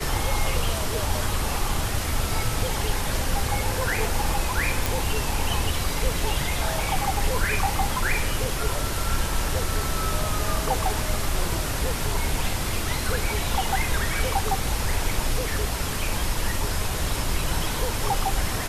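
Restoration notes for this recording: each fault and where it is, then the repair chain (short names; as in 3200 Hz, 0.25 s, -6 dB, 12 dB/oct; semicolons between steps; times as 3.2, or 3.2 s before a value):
4.86 pop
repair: de-click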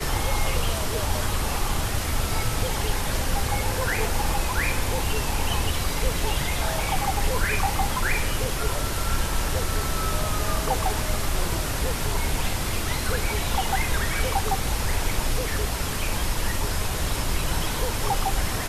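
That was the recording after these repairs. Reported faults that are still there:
none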